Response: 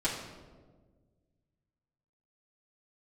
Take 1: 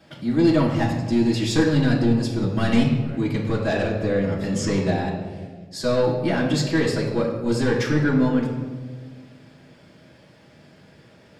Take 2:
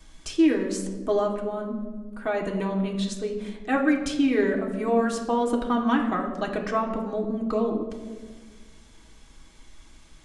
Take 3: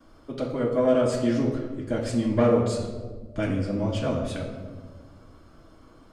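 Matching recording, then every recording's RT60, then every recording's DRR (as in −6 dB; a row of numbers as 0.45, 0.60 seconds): 1; 1.5, 1.5, 1.5 seconds; −10.0, −0.5, −19.0 decibels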